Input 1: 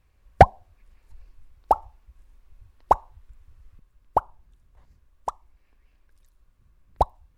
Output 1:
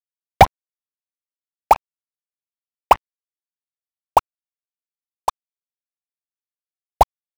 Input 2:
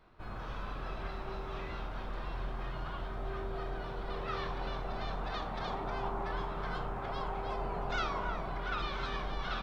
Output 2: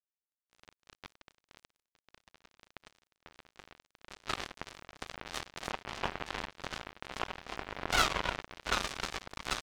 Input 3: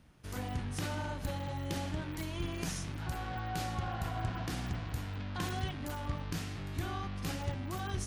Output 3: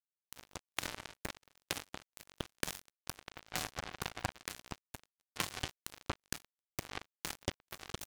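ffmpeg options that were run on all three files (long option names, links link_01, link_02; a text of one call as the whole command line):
ffmpeg -i in.wav -filter_complex "[0:a]acrossover=split=560[link_01][link_02];[link_02]acontrast=53[link_03];[link_01][link_03]amix=inputs=2:normalize=0,asoftclip=type=hard:threshold=-5dB,acrusher=bits=3:mix=0:aa=0.5,volume=3dB" out.wav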